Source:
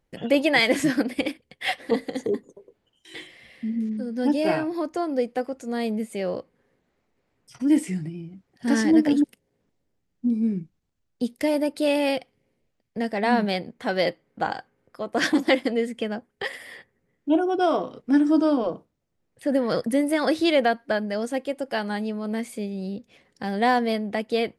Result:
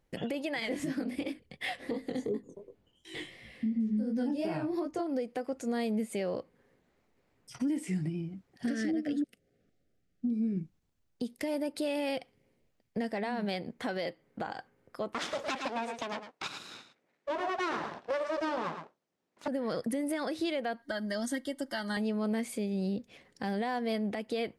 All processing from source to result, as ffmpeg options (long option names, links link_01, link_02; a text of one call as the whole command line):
ffmpeg -i in.wav -filter_complex "[0:a]asettb=1/sr,asplit=3[link_01][link_02][link_03];[link_01]atrim=end=0.604[link_04];[link_02]atrim=start=0.6:end=5.07,asetpts=PTS-STARTPTS,afade=type=in:duration=0.004:curve=qsin,afade=type=out:start_time=4.466:duration=0.004:curve=qsin,bandreject=frequency=1600:width=27,flanger=delay=18:depth=5.8:speed=2.8,lowshelf=frequency=320:gain=8.5[link_05];[link_03]atrim=start=5.066[link_06];[link_04][link_05]acrossfade=duration=0.004:curve1=hsin:curve2=qsin[link_07];[link_07][link_06]acrossfade=duration=0.004:curve1=qsin:curve2=hsin,asettb=1/sr,asplit=3[link_08][link_09][link_10];[link_08]atrim=end=8.664[link_11];[link_09]atrim=start=8.66:end=10.57,asetpts=PTS-STARTPTS,afade=type=in:duration=0.004:curve=qsin,afade=type=out:start_time=1.906:duration=0.004:curve=qsin,asuperstop=centerf=960:order=12:qfactor=2.5,highshelf=frequency=9200:gain=-9[link_12];[link_10]atrim=start=10.566[link_13];[link_11][link_12]acrossfade=duration=0.004:curve1=hsin:curve2=qsin[link_14];[link_14][link_13]acrossfade=duration=0.004:curve1=qsin:curve2=hsin,asettb=1/sr,asplit=3[link_15][link_16][link_17];[link_15]atrim=end=15.134[link_18];[link_16]atrim=start=15.13:end=19.48,asetpts=PTS-STARTPTS,afade=type=in:duration=0.004:curve=qsin,afade=type=out:start_time=4.346:duration=0.004:curve=qsin,aeval=exprs='abs(val(0))':channel_layout=same,highpass=230,lowpass=7100,aecho=1:1:109:0.282,atrim=end_sample=191835[link_19];[link_17]atrim=start=19.476[link_20];[link_18][link_19]acrossfade=duration=0.004:curve1=hsin:curve2=qsin[link_21];[link_21][link_20]acrossfade=duration=0.004:curve1=qsin:curve2=hsin,asettb=1/sr,asplit=3[link_22][link_23][link_24];[link_22]atrim=end=20.824[link_25];[link_23]atrim=start=20.82:end=21.97,asetpts=PTS-STARTPTS,afade=type=in:duration=0.004:curve=qsin,afade=type=out:start_time=1.146:duration=0.004:curve=qsin,asuperstop=centerf=2500:order=4:qfactor=3.2,equalizer=frequency=530:width_type=o:width=2.1:gain=-10.5,aecho=1:1:3.2:0.92,atrim=end_sample=50715[link_26];[link_24]atrim=start=21.966[link_27];[link_25][link_26]acrossfade=duration=0.004:curve1=hsin:curve2=qsin[link_28];[link_28][link_27]acrossfade=duration=0.004:curve1=qsin:curve2=hsin,acompressor=threshold=-27dB:ratio=5,alimiter=level_in=0.5dB:limit=-24dB:level=0:latency=1:release=161,volume=-0.5dB" out.wav